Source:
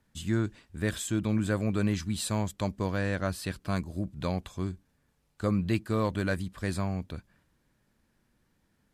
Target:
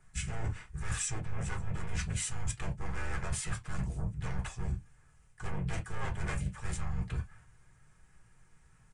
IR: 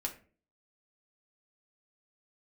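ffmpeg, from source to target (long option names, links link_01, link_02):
-filter_complex "[0:a]asplit=2[link_01][link_02];[link_02]aeval=exprs='0.188*sin(PI/2*5.01*val(0)/0.188)':channel_layout=same,volume=-4.5dB[link_03];[link_01][link_03]amix=inputs=2:normalize=0,asplit=4[link_04][link_05][link_06][link_07];[link_05]asetrate=22050,aresample=44100,atempo=2,volume=-7dB[link_08];[link_06]asetrate=33038,aresample=44100,atempo=1.33484,volume=-1dB[link_09];[link_07]asetrate=52444,aresample=44100,atempo=0.840896,volume=-13dB[link_10];[link_04][link_08][link_09][link_10]amix=inputs=4:normalize=0,aresample=22050,aresample=44100,equalizer=frequency=125:width_type=o:width=1:gain=7,equalizer=frequency=250:width_type=o:width=1:gain=-10,equalizer=frequency=500:width_type=o:width=1:gain=-6,equalizer=frequency=2000:width_type=o:width=1:gain=4,equalizer=frequency=4000:width_type=o:width=1:gain=-10,equalizer=frequency=8000:width_type=o:width=1:gain=7[link_11];[1:a]atrim=start_sample=2205,afade=type=out:start_time=0.17:duration=0.01,atrim=end_sample=7938,asetrate=74970,aresample=44100[link_12];[link_11][link_12]afir=irnorm=-1:irlink=0,areverse,acompressor=threshold=-23dB:ratio=6,areverse,volume=-7dB"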